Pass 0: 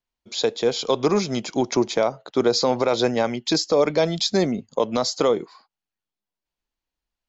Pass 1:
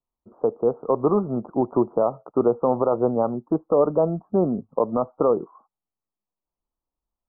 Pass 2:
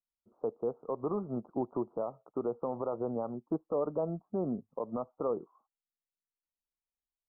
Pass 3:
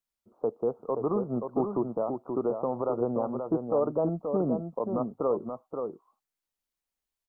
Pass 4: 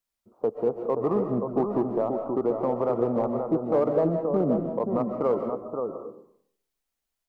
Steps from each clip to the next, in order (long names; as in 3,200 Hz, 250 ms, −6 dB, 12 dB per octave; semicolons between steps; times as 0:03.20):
Butterworth low-pass 1,300 Hz 96 dB per octave
brickwall limiter −15 dBFS, peak gain reduction 7 dB; expander for the loud parts 1.5 to 1, over −37 dBFS; level −7.5 dB
single-tap delay 528 ms −6 dB; level +5 dB
in parallel at −7 dB: gain into a clipping stage and back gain 22.5 dB; on the sum: convolution reverb RT60 0.65 s, pre-delay 100 ms, DRR 6 dB